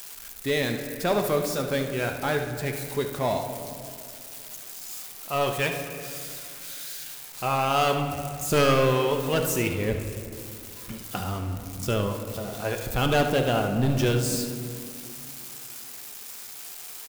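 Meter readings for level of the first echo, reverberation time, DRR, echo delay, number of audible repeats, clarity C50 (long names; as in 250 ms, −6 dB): −10.5 dB, 2.4 s, 3.5 dB, 74 ms, 1, 5.5 dB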